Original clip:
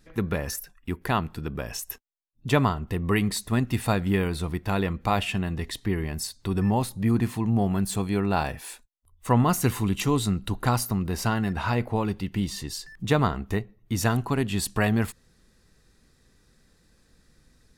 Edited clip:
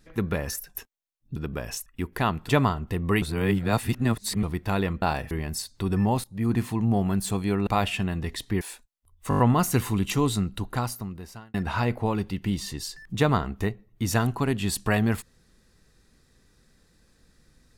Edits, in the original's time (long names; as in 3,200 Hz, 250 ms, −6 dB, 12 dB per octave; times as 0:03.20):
0:00.75–0:01.38: swap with 0:01.88–0:02.49
0:03.22–0:04.43: reverse
0:05.02–0:05.96: swap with 0:08.32–0:08.61
0:06.89–0:07.21: fade in, from −18.5 dB
0:09.29: stutter 0.02 s, 6 plays
0:10.20–0:11.44: fade out